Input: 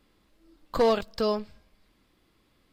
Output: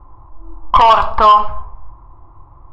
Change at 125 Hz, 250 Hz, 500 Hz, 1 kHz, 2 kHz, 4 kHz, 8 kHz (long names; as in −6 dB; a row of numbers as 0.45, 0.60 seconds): +13.5 dB, −2.0 dB, +5.5 dB, +24.5 dB, +15.5 dB, +14.5 dB, can't be measured